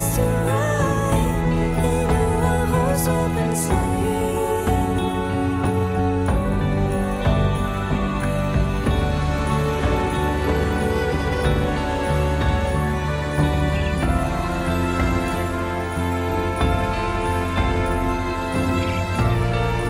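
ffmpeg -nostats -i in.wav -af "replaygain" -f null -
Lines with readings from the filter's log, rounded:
track_gain = +5.3 dB
track_peak = 0.281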